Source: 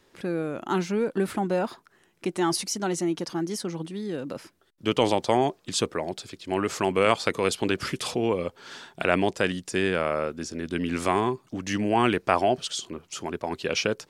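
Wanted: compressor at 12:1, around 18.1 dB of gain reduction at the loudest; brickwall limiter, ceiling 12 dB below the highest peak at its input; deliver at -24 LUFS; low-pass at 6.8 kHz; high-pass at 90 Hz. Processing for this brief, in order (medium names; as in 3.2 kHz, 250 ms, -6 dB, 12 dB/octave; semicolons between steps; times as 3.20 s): high-pass 90 Hz; low-pass 6.8 kHz; compression 12:1, threshold -35 dBFS; trim +17 dB; peak limiter -10.5 dBFS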